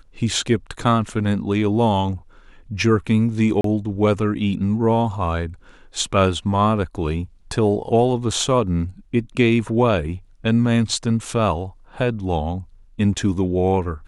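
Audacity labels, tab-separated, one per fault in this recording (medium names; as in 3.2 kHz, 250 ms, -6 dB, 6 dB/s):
3.610000	3.640000	dropout 33 ms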